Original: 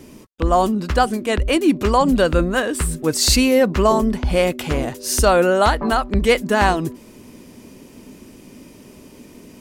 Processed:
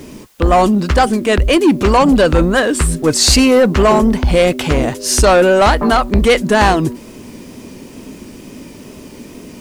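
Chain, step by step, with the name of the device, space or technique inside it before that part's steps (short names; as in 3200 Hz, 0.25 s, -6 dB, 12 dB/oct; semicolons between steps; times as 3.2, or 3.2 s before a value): compact cassette (soft clip -13 dBFS, distortion -13 dB; LPF 10000 Hz 12 dB/oct; wow and flutter; white noise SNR 39 dB); gain +8.5 dB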